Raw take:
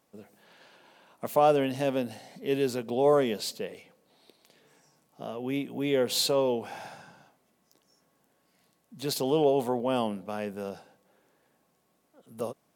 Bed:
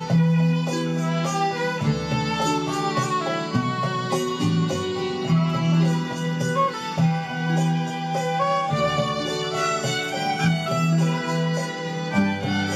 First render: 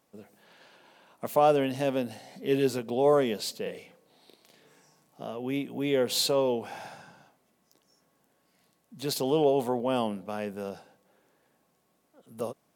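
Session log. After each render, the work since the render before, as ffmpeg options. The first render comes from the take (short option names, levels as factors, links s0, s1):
-filter_complex "[0:a]asettb=1/sr,asplit=3[s0][s1][s2];[s0]atrim=end=2.264[s3];[s1]atrim=start=2.26:end=2.79,asetpts=PTS-STARTPTS,afade=t=in:d=0.004:c=qsin,afade=t=out:st=0.526:d=0.004:c=qsin,asplit=2[s4][s5];[s5]adelay=15,volume=0.501[s6];[s4][s6]amix=inputs=2:normalize=0,atrim=end_sample=23373[s7];[s2]atrim=start=2.786[s8];[s3][s7]acrossfade=d=0.004:c1=hsin:c2=qsin[s9];[s9][s8]acrossfade=d=0.004:c1=qsin:c2=hsin,asettb=1/sr,asplit=3[s10][s11][s12];[s10]atrim=end=3.624[s13];[s11]atrim=start=3.62:end=5.23,asetpts=PTS-STARTPTS,afade=t=in:d=0.004:c=qsin,afade=t=out:st=1.606:d=0.004:c=qsin,asplit=2[s14][s15];[s15]adelay=39,volume=0.75[s16];[s14][s16]amix=inputs=2:normalize=0,atrim=end_sample=71001[s17];[s12]atrim=start=5.226[s18];[s13][s17]acrossfade=d=0.004:c1=hsin:c2=qsin[s19];[s19][s18]acrossfade=d=0.004:c1=qsin:c2=hsin"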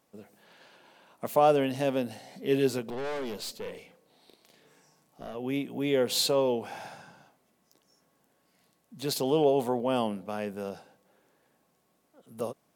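-filter_complex "[0:a]asettb=1/sr,asplit=3[s0][s1][s2];[s0]atrim=end=2.904[s3];[s1]atrim=start=2.9:end=5.35,asetpts=PTS-STARTPTS,afade=t=in:d=0.004:c=qsin,afade=t=out:st=2.446:d=0.004:c=qsin,aeval=exprs='(tanh(39.8*val(0)+0.4)-tanh(0.4))/39.8':c=same[s4];[s2]atrim=start=5.346[s5];[s3][s4]acrossfade=d=0.004:c1=hsin:c2=qsin[s6];[s6][s5]acrossfade=d=0.004:c1=qsin:c2=hsin"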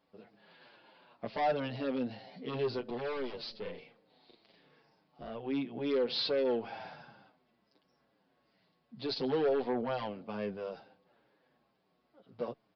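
-filter_complex "[0:a]aresample=11025,asoftclip=type=tanh:threshold=0.0631,aresample=44100,asplit=2[s0][s1];[s1]adelay=7.3,afreqshift=-2.2[s2];[s0][s2]amix=inputs=2:normalize=1"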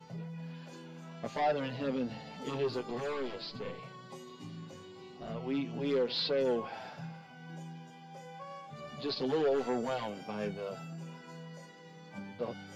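-filter_complex "[1:a]volume=0.0596[s0];[0:a][s0]amix=inputs=2:normalize=0"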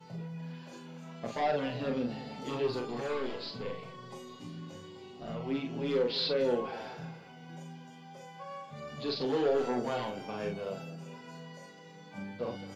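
-filter_complex "[0:a]asplit=2[s0][s1];[s1]adelay=41,volume=0.596[s2];[s0][s2]amix=inputs=2:normalize=0,asplit=2[s3][s4];[s4]adelay=211,lowpass=f=1000:p=1,volume=0.178,asplit=2[s5][s6];[s6]adelay=211,lowpass=f=1000:p=1,volume=0.52,asplit=2[s7][s8];[s8]adelay=211,lowpass=f=1000:p=1,volume=0.52,asplit=2[s9][s10];[s10]adelay=211,lowpass=f=1000:p=1,volume=0.52,asplit=2[s11][s12];[s12]adelay=211,lowpass=f=1000:p=1,volume=0.52[s13];[s3][s5][s7][s9][s11][s13]amix=inputs=6:normalize=0"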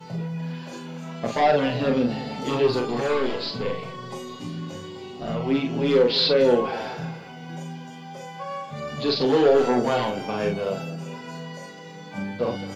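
-af "volume=3.55"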